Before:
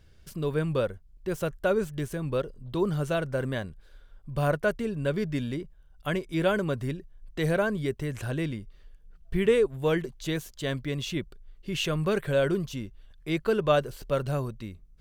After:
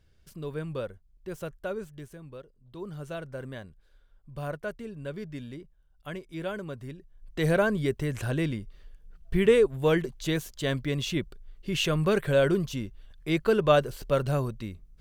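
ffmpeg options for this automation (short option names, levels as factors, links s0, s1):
-af "volume=5.01,afade=t=out:st=1.45:d=1.07:silence=0.251189,afade=t=in:st=2.52:d=0.62:silence=0.316228,afade=t=in:st=6.95:d=0.57:silence=0.281838"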